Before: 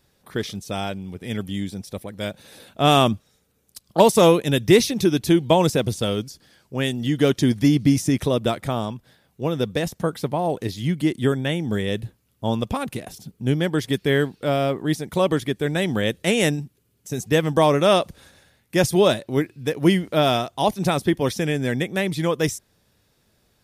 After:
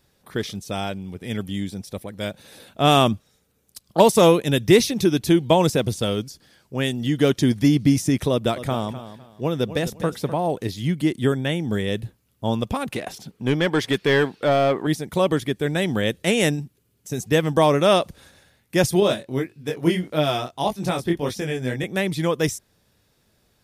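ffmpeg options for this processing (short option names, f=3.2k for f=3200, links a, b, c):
-filter_complex "[0:a]asettb=1/sr,asplit=3[a][b][c];[a]atrim=end=8.314[d];[b]atrim=start=8.31:end=10.34,asetpts=PTS-STARTPTS,afade=t=in:d=0.004:c=qsin,afade=t=out:st=2.026:d=0.004:c=qsin,aecho=1:1:253|506|759:0.224|0.0582|0.0151,atrim=end_sample=89523[e];[c]atrim=start=10.336[f];[d][e]acrossfade=d=0.004:c1=hsin:c2=qsin[g];[g][f]acrossfade=d=0.004:c1=qsin:c2=hsin,asettb=1/sr,asplit=3[h][i][j];[h]atrim=end=12.924[k];[i]atrim=start=12.92:end=14.87,asetpts=PTS-STARTPTS,afade=t=in:d=0.004:c=qsin,afade=t=out:st=1.946:d=0.004:c=qsin,asplit=2[l][m];[m]highpass=f=720:p=1,volume=15dB,asoftclip=type=tanh:threshold=-9dB[n];[l][n]amix=inputs=2:normalize=0,lowpass=f=2.7k:p=1,volume=-6dB[o];[j]atrim=start=14.866[p];[k][o]acrossfade=d=0.004:c1=hsin:c2=qsin[q];[q][p]acrossfade=d=0.004:c1=qsin:c2=hsin,asettb=1/sr,asplit=3[r][s][t];[r]atrim=end=19.004[u];[s]atrim=start=19:end=21.84,asetpts=PTS-STARTPTS,afade=t=in:d=0.004:c=qsin,afade=t=out:st=2.836:d=0.004:c=qsin,flanger=delay=19.5:depth=4.4:speed=1.7[v];[t]atrim=start=21.836[w];[u][v]acrossfade=d=0.004:c1=hsin:c2=qsin[x];[x][w]acrossfade=d=0.004:c1=qsin:c2=hsin"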